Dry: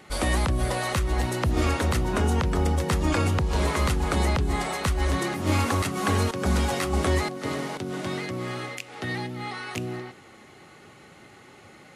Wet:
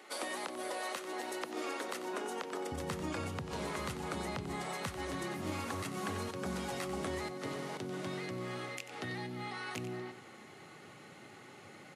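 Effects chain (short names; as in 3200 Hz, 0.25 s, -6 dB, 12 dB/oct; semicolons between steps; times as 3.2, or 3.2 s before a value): HPF 300 Hz 24 dB/oct, from 2.72 s 100 Hz; compressor 2.5:1, threshold -36 dBFS, peak gain reduction 10.5 dB; echo 92 ms -11.5 dB; gain -4 dB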